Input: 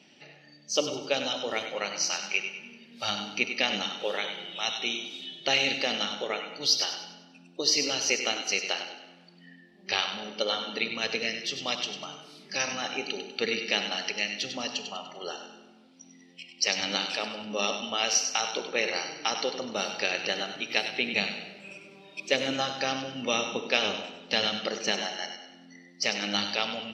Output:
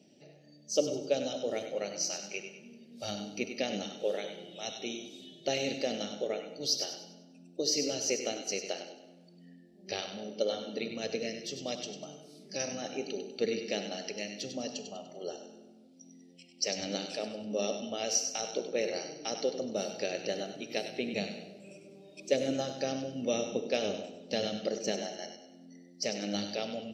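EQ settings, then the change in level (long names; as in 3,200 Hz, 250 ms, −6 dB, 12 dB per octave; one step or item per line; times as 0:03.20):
dynamic equaliser 1,700 Hz, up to +4 dB, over −40 dBFS, Q 1.2
drawn EQ curve 640 Hz 0 dB, 980 Hz −19 dB, 3,100 Hz −14 dB, 7,200 Hz −1 dB
0.0 dB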